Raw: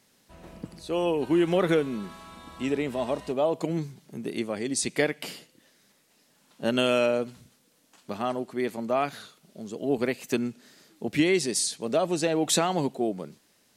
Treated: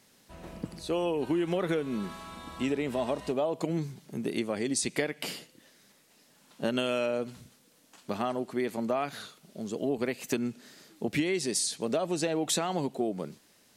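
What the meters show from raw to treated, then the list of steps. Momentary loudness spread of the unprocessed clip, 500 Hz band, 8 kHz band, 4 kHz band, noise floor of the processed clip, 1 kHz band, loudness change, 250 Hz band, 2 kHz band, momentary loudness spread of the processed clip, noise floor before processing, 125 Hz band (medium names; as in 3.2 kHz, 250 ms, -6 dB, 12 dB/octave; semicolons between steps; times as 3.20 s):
17 LU, -4.0 dB, -3.0 dB, -3.5 dB, -63 dBFS, -4.0 dB, -4.0 dB, -3.5 dB, -4.5 dB, 13 LU, -65 dBFS, -3.0 dB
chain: compression 5:1, threshold -28 dBFS, peak gain reduction 10 dB; trim +2 dB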